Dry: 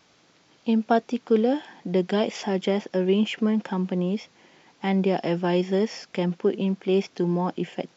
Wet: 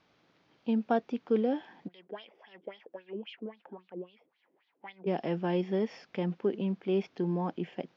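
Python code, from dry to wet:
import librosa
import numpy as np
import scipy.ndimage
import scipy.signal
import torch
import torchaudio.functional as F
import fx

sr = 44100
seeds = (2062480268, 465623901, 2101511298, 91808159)

y = fx.high_shelf(x, sr, hz=6400.0, db=7.0)
y = fx.wah_lfo(y, sr, hz=3.7, low_hz=320.0, high_hz=3900.0, q=3.9, at=(1.87, 5.06), fade=0.02)
y = fx.air_absorb(y, sr, metres=250.0)
y = y * 10.0 ** (-6.5 / 20.0)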